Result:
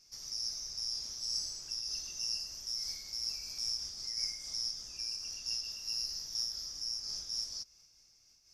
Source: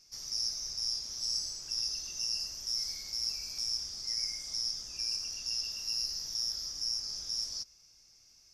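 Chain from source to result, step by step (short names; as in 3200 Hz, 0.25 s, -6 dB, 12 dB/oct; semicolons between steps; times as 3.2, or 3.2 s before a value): noise-modulated level, depth 60%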